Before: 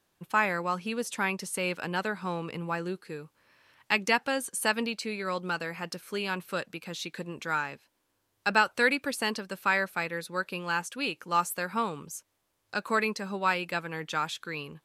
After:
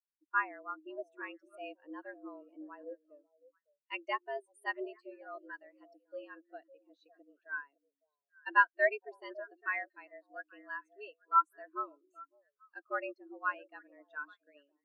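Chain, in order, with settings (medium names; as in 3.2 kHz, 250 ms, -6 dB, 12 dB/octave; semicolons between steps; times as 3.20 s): frequency shift +140 Hz; repeats whose band climbs or falls 278 ms, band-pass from 220 Hz, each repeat 1.4 oct, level -3.5 dB; spectral contrast expander 2.5:1; trim -2.5 dB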